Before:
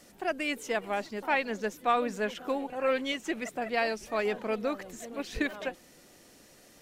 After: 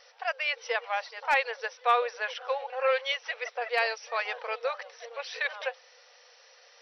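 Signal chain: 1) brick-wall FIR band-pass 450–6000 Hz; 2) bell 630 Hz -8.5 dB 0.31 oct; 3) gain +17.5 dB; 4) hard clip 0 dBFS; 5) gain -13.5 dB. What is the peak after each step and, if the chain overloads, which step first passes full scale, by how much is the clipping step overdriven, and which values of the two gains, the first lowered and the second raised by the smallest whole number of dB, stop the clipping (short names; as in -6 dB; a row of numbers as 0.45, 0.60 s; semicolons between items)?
-14.0, -14.0, +3.5, 0.0, -13.5 dBFS; step 3, 3.5 dB; step 3 +13.5 dB, step 5 -9.5 dB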